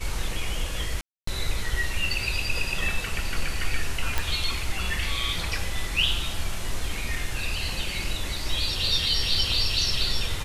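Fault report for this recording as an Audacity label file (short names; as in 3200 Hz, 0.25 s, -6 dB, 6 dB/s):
1.010000	1.270000	gap 0.264 s
4.180000	4.180000	pop -8 dBFS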